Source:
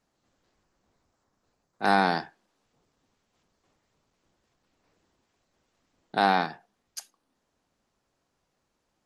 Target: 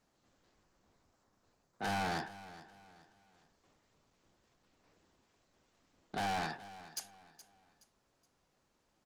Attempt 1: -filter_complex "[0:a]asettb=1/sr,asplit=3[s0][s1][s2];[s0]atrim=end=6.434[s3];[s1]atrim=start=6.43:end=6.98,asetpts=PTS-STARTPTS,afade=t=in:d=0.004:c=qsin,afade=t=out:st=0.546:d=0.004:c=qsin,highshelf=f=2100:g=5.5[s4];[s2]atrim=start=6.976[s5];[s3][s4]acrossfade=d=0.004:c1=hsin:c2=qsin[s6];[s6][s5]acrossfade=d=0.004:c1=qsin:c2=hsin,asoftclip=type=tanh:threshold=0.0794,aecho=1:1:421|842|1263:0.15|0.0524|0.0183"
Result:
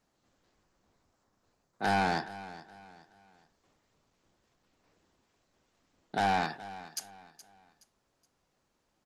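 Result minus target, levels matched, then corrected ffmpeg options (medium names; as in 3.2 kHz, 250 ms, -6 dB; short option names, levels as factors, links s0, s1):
saturation: distortion -5 dB
-filter_complex "[0:a]asettb=1/sr,asplit=3[s0][s1][s2];[s0]atrim=end=6.434[s3];[s1]atrim=start=6.43:end=6.98,asetpts=PTS-STARTPTS,afade=t=in:d=0.004:c=qsin,afade=t=out:st=0.546:d=0.004:c=qsin,highshelf=f=2100:g=5.5[s4];[s2]atrim=start=6.976[s5];[s3][s4]acrossfade=d=0.004:c1=hsin:c2=qsin[s6];[s6][s5]acrossfade=d=0.004:c1=qsin:c2=hsin,asoftclip=type=tanh:threshold=0.0224,aecho=1:1:421|842|1263:0.15|0.0524|0.0183"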